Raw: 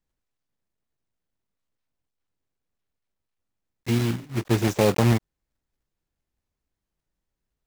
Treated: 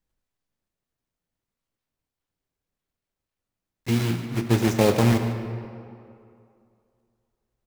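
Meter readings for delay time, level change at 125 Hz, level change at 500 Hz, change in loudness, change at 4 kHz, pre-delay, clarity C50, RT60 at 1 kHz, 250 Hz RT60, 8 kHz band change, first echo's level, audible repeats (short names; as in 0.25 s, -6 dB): 0.149 s, +0.5 dB, +0.5 dB, +0.5 dB, +1.0 dB, 5 ms, 6.5 dB, 2.5 s, 2.4 s, +0.5 dB, -14.5 dB, 1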